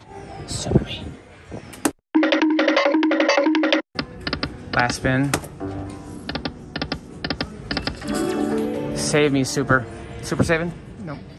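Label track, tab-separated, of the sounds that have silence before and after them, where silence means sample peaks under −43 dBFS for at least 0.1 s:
2.150000	3.810000	sound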